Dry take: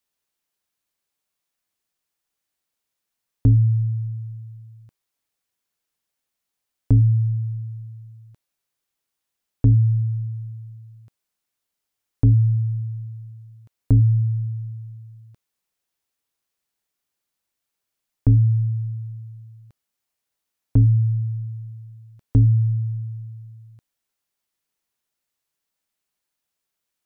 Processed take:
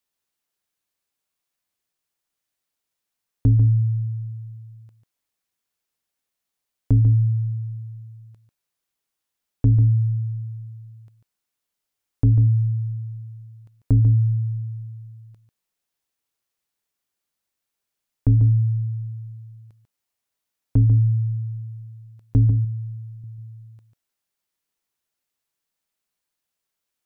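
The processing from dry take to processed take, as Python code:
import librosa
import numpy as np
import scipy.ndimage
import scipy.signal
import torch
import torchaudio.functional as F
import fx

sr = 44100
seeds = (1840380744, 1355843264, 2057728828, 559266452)

p1 = fx.peak_eq(x, sr, hz=150.0, db=-13.5, octaves=1.0, at=(22.5, 23.24))
p2 = p1 + fx.echo_single(p1, sr, ms=144, db=-9.0, dry=0)
y = p2 * librosa.db_to_amplitude(-1.5)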